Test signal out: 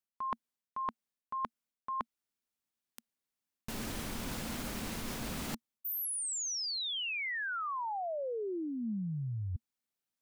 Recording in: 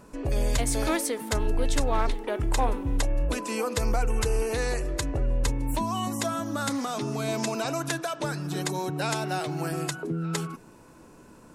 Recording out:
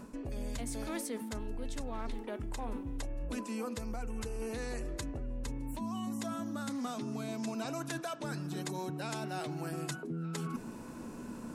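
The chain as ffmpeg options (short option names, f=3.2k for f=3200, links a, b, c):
-af "equalizer=f=230:w=3.4:g=11,areverse,acompressor=threshold=-38dB:ratio=12,areverse,volume=3dB"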